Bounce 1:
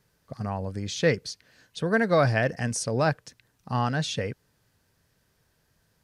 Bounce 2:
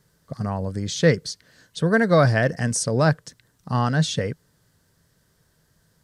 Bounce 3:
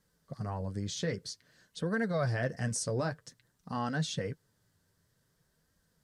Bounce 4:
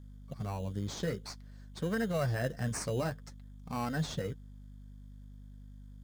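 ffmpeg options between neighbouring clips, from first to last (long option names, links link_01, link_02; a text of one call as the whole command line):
ffmpeg -i in.wav -af "equalizer=frequency=160:width_type=o:width=0.33:gain=5,equalizer=frequency=800:width_type=o:width=0.33:gain=-4,equalizer=frequency=2500:width_type=o:width=0.33:gain=-8,equalizer=frequency=8000:width_type=o:width=0.33:gain=4,volume=4.5dB" out.wav
ffmpeg -i in.wav -af "alimiter=limit=-13dB:level=0:latency=1:release=98,flanger=delay=3.7:depth=7.1:regen=-36:speed=0.52:shape=sinusoidal,volume=-6dB" out.wav
ffmpeg -i in.wav -filter_complex "[0:a]aeval=exprs='val(0)+0.00398*(sin(2*PI*50*n/s)+sin(2*PI*2*50*n/s)/2+sin(2*PI*3*50*n/s)/3+sin(2*PI*4*50*n/s)/4+sin(2*PI*5*50*n/s)/5)':channel_layout=same,asplit=2[link_01][link_02];[link_02]acrusher=samples=13:mix=1:aa=0.000001,volume=-3.5dB[link_03];[link_01][link_03]amix=inputs=2:normalize=0,volume=-5dB" out.wav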